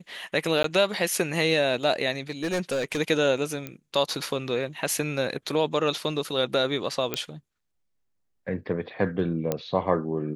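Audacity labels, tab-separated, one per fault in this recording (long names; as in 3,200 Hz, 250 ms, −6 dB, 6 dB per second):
0.630000	0.640000	drop-out
2.290000	2.990000	clipping −22.5 dBFS
3.670000	3.670000	click −18 dBFS
7.140000	7.140000	click −10 dBFS
9.520000	9.520000	click −11 dBFS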